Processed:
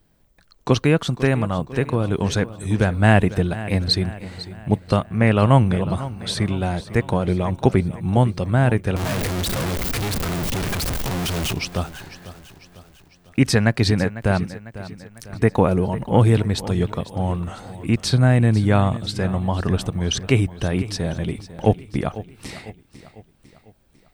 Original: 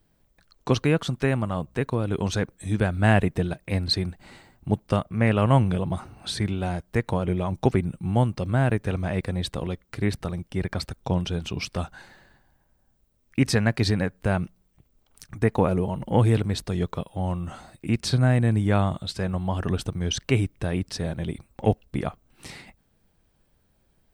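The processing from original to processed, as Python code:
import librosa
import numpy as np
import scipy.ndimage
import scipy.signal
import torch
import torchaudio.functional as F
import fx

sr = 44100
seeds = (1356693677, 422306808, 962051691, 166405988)

y = fx.clip_1bit(x, sr, at=(8.96, 11.53))
y = fx.echo_feedback(y, sr, ms=499, feedback_pct=49, wet_db=-15.5)
y = y * 10.0 ** (4.5 / 20.0)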